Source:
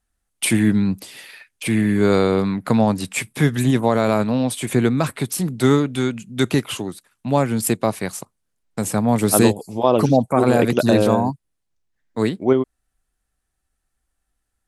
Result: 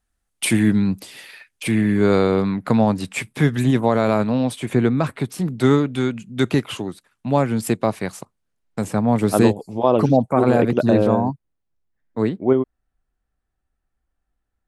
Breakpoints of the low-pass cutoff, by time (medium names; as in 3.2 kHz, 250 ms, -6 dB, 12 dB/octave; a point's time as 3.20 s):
low-pass 6 dB/octave
10 kHz
from 1.71 s 4.1 kHz
from 4.56 s 2.2 kHz
from 5.48 s 3.7 kHz
from 8.84 s 2.3 kHz
from 10.62 s 1.3 kHz